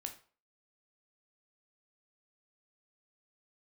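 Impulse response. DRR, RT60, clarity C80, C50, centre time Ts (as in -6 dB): 4.5 dB, 0.40 s, 16.5 dB, 11.5 dB, 11 ms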